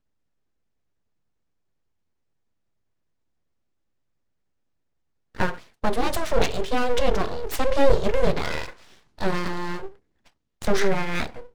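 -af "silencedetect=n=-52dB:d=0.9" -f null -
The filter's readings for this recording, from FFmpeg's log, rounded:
silence_start: 0.00
silence_end: 5.35 | silence_duration: 5.35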